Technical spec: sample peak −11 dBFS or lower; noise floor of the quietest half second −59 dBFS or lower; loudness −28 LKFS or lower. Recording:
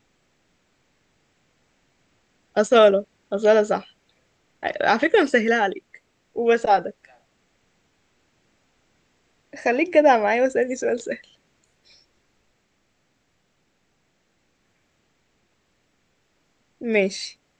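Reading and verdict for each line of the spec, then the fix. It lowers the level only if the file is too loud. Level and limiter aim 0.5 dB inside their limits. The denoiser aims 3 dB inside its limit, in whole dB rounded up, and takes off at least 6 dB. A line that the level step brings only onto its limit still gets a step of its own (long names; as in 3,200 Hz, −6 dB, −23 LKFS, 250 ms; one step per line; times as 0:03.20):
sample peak −4.5 dBFS: out of spec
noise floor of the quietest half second −68 dBFS: in spec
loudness −20.5 LKFS: out of spec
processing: level −8 dB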